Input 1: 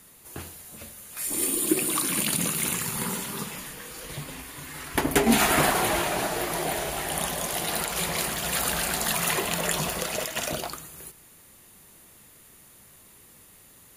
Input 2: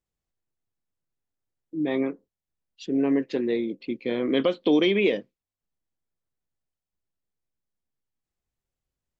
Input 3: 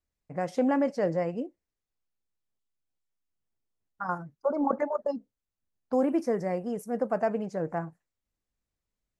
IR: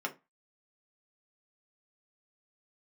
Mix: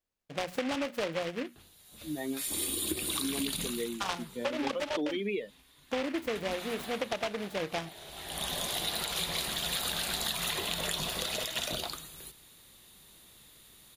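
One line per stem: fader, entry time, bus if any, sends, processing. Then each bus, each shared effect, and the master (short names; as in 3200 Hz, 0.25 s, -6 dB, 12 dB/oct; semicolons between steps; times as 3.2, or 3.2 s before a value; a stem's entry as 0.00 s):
-5.5 dB, 1.20 s, no send, octaver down 2 oct, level -6 dB; bell 3700 Hz +13 dB 0.55 oct; auto duck -18 dB, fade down 0.40 s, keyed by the third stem
-3.0 dB, 0.30 s, no send, per-bin expansion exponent 2
+2.0 dB, 0.00 s, no send, low shelf 180 Hz -11.5 dB; notches 60/120/180/240 Hz; noise-modulated delay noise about 1900 Hz, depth 0.14 ms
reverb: off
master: compressor 10:1, threshold -29 dBFS, peak gain reduction 10.5 dB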